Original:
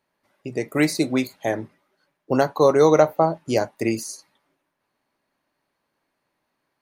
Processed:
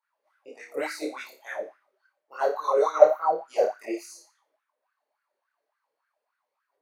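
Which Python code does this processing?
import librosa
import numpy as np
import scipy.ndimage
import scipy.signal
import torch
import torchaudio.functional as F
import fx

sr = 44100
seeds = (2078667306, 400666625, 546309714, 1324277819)

y = fx.chorus_voices(x, sr, voices=6, hz=1.2, base_ms=23, depth_ms=3.6, mix_pct=65)
y = fx.room_flutter(y, sr, wall_m=5.0, rt60_s=0.36)
y = fx.filter_lfo_highpass(y, sr, shape='sine', hz=3.5, low_hz=460.0, high_hz=1500.0, q=7.2)
y = y * librosa.db_to_amplitude(-10.5)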